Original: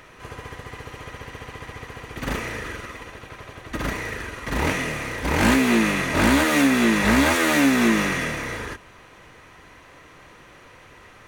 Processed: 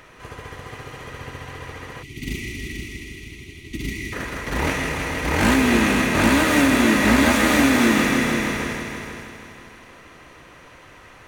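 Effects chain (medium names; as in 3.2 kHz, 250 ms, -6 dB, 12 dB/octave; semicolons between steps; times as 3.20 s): multi-head delay 159 ms, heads all three, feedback 45%, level -9.5 dB; time-frequency box 2.03–4.13 s, 420–1900 Hz -26 dB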